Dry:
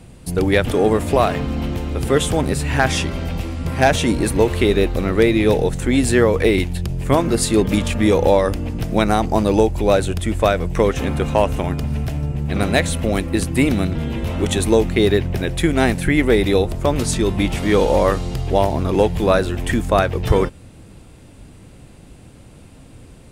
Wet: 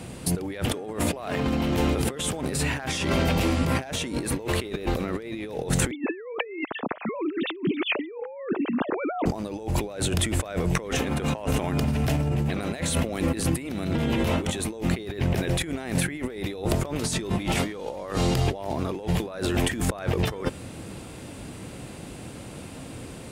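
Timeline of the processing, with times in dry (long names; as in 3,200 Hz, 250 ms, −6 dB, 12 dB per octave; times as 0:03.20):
0:05.91–0:09.26: three sine waves on the formant tracks
whole clip: high-pass filter 180 Hz 6 dB per octave; compressor whose output falls as the input rises −29 dBFS, ratio −1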